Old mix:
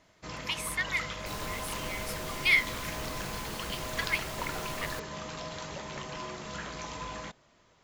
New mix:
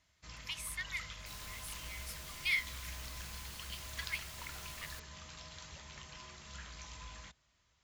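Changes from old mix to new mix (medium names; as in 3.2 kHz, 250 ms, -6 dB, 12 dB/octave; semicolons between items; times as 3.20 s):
first sound: add peaking EQ 65 Hz +14 dB 1.1 oct; master: add amplifier tone stack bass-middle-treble 5-5-5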